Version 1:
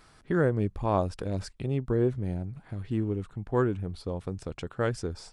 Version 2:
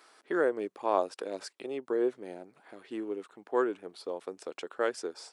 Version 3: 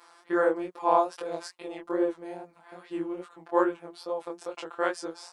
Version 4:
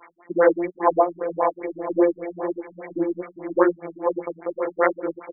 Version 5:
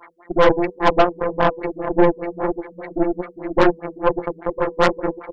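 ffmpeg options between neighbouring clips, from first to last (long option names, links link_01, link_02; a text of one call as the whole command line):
ffmpeg -i in.wav -af "highpass=frequency=340:width=0.5412,highpass=frequency=340:width=1.3066" out.wav
ffmpeg -i in.wav -af "equalizer=frequency=950:width_type=o:width=0.91:gain=7.5,afftfilt=real='hypot(re,im)*cos(PI*b)':imag='0':win_size=1024:overlap=0.75,flanger=delay=19:depth=7.4:speed=2.4,volume=7.5dB" out.wav
ffmpeg -i in.wav -af "aexciter=amount=9:drive=6:freq=2300,aecho=1:1:501|1002|1503|2004|2505:0.398|0.183|0.0842|0.0388|0.0178,afftfilt=real='re*lt(b*sr/1024,240*pow(2400/240,0.5+0.5*sin(2*PI*5*pts/sr)))':imag='im*lt(b*sr/1024,240*pow(2400/240,0.5+0.5*sin(2*PI*5*pts/sr)))':win_size=1024:overlap=0.75,volume=8.5dB" out.wav
ffmpeg -i in.wav -af "acontrast=57,bandreject=frequency=98.93:width_type=h:width=4,bandreject=frequency=197.86:width_type=h:width=4,bandreject=frequency=296.79:width_type=h:width=4,bandreject=frequency=395.72:width_type=h:width=4,bandreject=frequency=494.65:width_type=h:width=4,aeval=exprs='1.06*(cos(1*acos(clip(val(0)/1.06,-1,1)))-cos(1*PI/2))+0.188*(cos(6*acos(clip(val(0)/1.06,-1,1)))-cos(6*PI/2))':channel_layout=same,volume=-2.5dB" out.wav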